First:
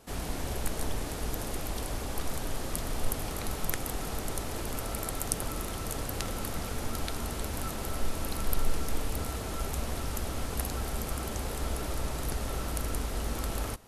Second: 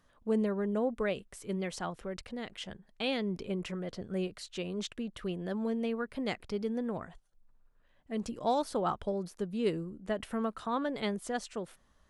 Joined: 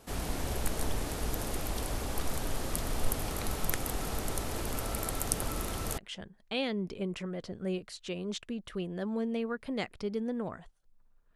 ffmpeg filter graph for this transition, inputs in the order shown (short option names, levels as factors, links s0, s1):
-filter_complex "[0:a]apad=whole_dur=11.35,atrim=end=11.35,atrim=end=5.982[s0];[1:a]atrim=start=2.468:end=7.84[s1];[s0][s1]acrossfade=d=0.004:c1=hsin:c2=hsin"